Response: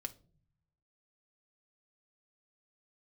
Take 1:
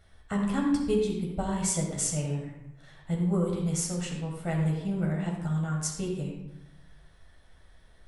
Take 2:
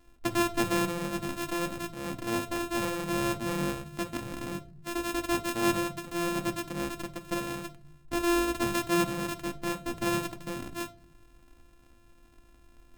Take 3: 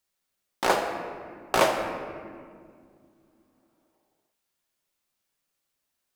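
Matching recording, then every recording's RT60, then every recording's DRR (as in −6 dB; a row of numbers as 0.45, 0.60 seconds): 2; 0.90, 0.45, 2.2 seconds; −1.0, 6.5, 1.5 decibels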